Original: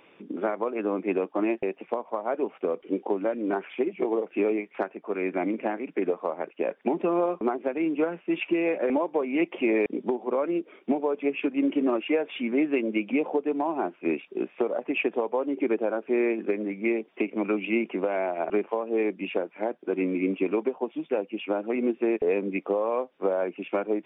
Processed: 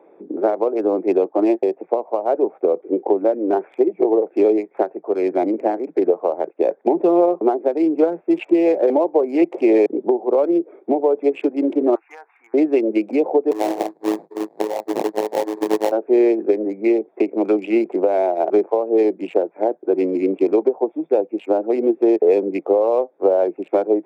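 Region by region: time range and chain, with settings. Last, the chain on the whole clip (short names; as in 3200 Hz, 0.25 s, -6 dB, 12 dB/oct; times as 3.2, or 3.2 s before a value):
11.95–12.54 HPF 830 Hz 24 dB/oct + fixed phaser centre 1400 Hz, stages 4
13.51–15.92 low shelf 150 Hz -7 dB + robotiser 107 Hz + sample-rate reducer 1400 Hz, jitter 20%
whole clip: Wiener smoothing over 15 samples; Chebyshev high-pass 160 Hz, order 5; band shelf 520 Hz +11.5 dB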